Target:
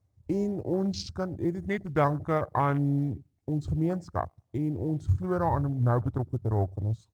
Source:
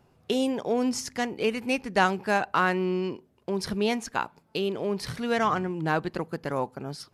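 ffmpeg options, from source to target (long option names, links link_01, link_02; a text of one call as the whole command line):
ffmpeg -i in.wav -filter_complex "[0:a]equalizer=frequency=125:width_type=o:width=1:gain=11,equalizer=frequency=250:width_type=o:width=1:gain=-4,equalizer=frequency=4000:width_type=o:width=1:gain=-10,equalizer=frequency=8000:width_type=o:width=1:gain=10,asetrate=34006,aresample=44100,atempo=1.29684,asplit=2[link_01][link_02];[link_02]adelay=106,lowpass=frequency=1400:poles=1,volume=-22dB,asplit=2[link_03][link_04];[link_04]adelay=106,lowpass=frequency=1400:poles=1,volume=0.37,asplit=2[link_05][link_06];[link_06]adelay=106,lowpass=frequency=1400:poles=1,volume=0.37[link_07];[link_03][link_05][link_07]amix=inputs=3:normalize=0[link_08];[link_01][link_08]amix=inputs=2:normalize=0,acrusher=bits=5:mode=log:mix=0:aa=0.000001,afwtdn=0.0224,equalizer=frequency=76:width=1.1:gain=8,volume=-2dB" -ar 48000 -c:a libopus -b:a 48k out.opus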